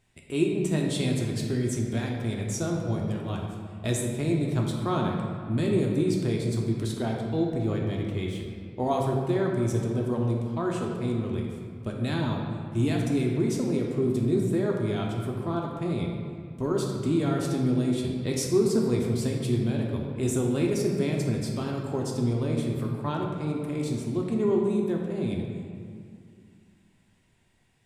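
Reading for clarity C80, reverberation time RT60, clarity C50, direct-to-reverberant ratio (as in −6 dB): 3.5 dB, 2.3 s, 2.0 dB, −1.0 dB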